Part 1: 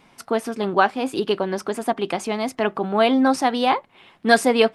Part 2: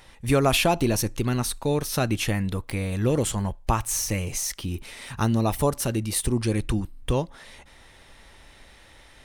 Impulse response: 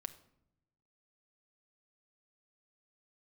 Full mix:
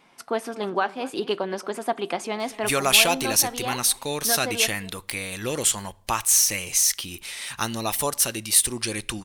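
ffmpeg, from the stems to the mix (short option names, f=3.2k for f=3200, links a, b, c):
-filter_complex "[0:a]alimiter=limit=-6.5dB:level=0:latency=1:release=355,volume=-5.5dB,afade=t=out:st=2.49:d=0.36:silence=0.421697,asplit=3[a][b][c];[b]volume=-3.5dB[d];[c]volume=-17.5dB[e];[1:a]tiltshelf=f=1.4k:g=-7,adelay=2400,volume=0.5dB,asplit=2[f][g];[g]volume=-7.5dB[h];[2:a]atrim=start_sample=2205[i];[d][h]amix=inputs=2:normalize=0[j];[j][i]afir=irnorm=-1:irlink=0[k];[e]aecho=0:1:229:1[l];[a][f][k][l]amix=inputs=4:normalize=0,lowshelf=f=190:g=-11"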